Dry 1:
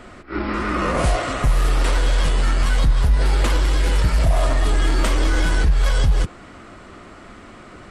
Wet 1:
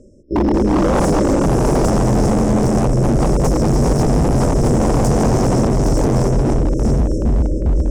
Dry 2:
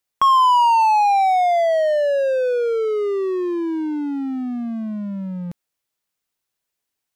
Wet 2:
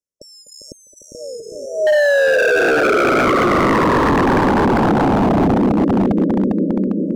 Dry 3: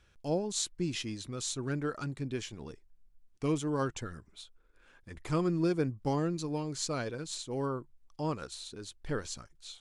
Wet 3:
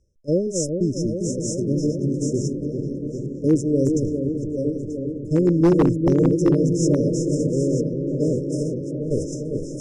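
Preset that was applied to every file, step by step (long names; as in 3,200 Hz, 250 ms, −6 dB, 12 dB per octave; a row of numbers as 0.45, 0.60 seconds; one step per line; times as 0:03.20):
feedback delay that plays each chunk backwards 467 ms, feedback 46%, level −5 dB
noise gate −35 dBFS, range −16 dB
dynamic equaliser 280 Hz, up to +4 dB, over −32 dBFS, Q 1.6
reversed playback
upward compression, threshold −32 dBFS
reversed playback
soft clipping −9.5 dBFS
linear-phase brick-wall band-stop 620–5,100 Hz
high-frequency loss of the air 52 metres
on a send: delay with a low-pass on its return 401 ms, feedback 77%, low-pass 660 Hz, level −5.5 dB
on the sum: wave folding −20 dBFS
normalise the peak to −9 dBFS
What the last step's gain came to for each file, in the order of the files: +11.0, +11.0, +11.0 decibels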